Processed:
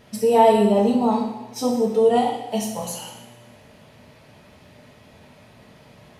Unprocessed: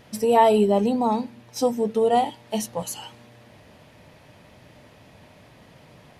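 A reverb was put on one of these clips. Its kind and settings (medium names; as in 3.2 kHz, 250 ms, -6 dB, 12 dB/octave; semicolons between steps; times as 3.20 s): two-slope reverb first 0.84 s, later 2.1 s, DRR -0.5 dB; trim -2 dB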